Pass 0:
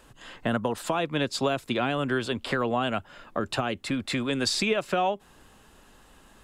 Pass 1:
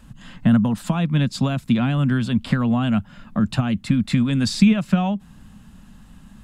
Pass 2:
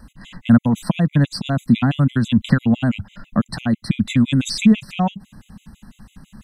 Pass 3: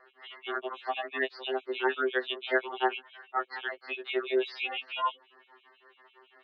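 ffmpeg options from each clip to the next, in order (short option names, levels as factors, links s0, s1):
-af "lowshelf=f=280:t=q:w=3:g=11.5"
-af "afftfilt=real='re*gt(sin(2*PI*6*pts/sr)*(1-2*mod(floor(b*sr/1024/2000),2)),0)':imag='im*gt(sin(2*PI*6*pts/sr)*(1-2*mod(floor(b*sr/1024/2000),2)),0)':win_size=1024:overlap=0.75,volume=1.78"
-af "highpass=f=370:t=q:w=0.5412,highpass=f=370:t=q:w=1.307,lowpass=f=3200:t=q:w=0.5176,lowpass=f=3200:t=q:w=0.7071,lowpass=f=3200:t=q:w=1.932,afreqshift=120,afftfilt=real='re*2.45*eq(mod(b,6),0)':imag='im*2.45*eq(mod(b,6),0)':win_size=2048:overlap=0.75"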